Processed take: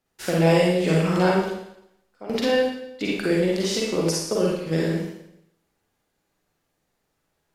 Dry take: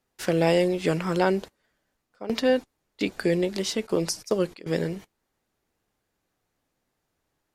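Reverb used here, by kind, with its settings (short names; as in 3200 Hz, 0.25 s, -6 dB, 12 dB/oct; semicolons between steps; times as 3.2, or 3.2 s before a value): Schroeder reverb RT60 0.78 s, DRR -4.5 dB; gain -2 dB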